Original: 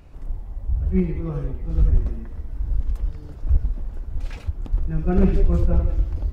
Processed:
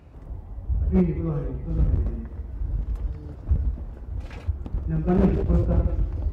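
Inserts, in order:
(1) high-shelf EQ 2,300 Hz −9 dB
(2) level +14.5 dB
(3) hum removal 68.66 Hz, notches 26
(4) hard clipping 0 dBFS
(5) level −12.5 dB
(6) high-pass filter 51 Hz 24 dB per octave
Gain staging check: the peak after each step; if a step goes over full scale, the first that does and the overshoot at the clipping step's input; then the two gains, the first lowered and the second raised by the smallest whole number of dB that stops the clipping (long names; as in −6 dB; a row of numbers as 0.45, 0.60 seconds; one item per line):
−9.5, +5.0, +7.5, 0.0, −12.5, −8.0 dBFS
step 2, 7.5 dB
step 2 +6.5 dB, step 5 −4.5 dB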